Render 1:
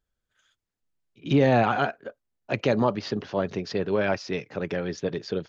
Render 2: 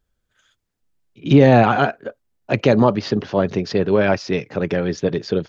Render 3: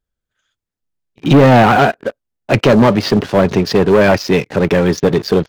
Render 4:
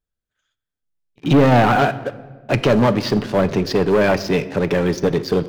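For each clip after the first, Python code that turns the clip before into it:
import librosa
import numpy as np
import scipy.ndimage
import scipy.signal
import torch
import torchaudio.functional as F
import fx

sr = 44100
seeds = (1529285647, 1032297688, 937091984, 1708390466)

y1 = fx.low_shelf(x, sr, hz=500.0, db=4.0)
y1 = y1 * librosa.db_to_amplitude(6.0)
y2 = fx.leveller(y1, sr, passes=3)
y2 = y2 * librosa.db_to_amplitude(-1.5)
y3 = fx.room_shoebox(y2, sr, seeds[0], volume_m3=1100.0, walls='mixed', distance_m=0.38)
y3 = y3 * librosa.db_to_amplitude(-5.5)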